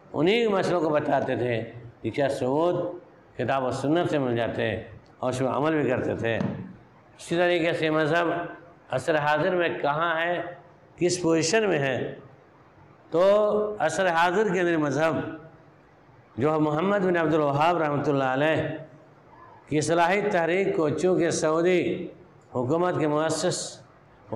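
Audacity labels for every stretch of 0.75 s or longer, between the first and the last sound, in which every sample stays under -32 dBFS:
12.140000	13.130000	silence
15.350000	16.380000	silence
18.820000	19.720000	silence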